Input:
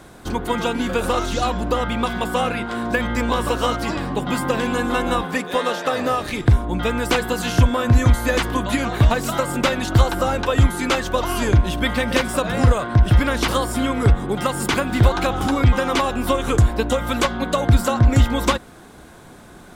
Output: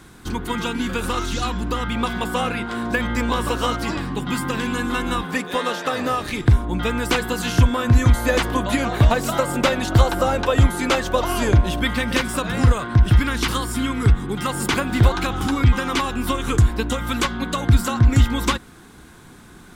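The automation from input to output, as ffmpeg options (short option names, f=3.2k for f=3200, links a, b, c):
-af "asetnsamples=n=441:p=0,asendcmd='1.95 equalizer g -5;4.01 equalizer g -13;5.28 equalizer g -5;8.15 equalizer g 2;11.81 equalizer g -8;13.16 equalizer g -14.5;14.47 equalizer g -4;15.15 equalizer g -11',equalizer=f=610:t=o:w=0.77:g=-13"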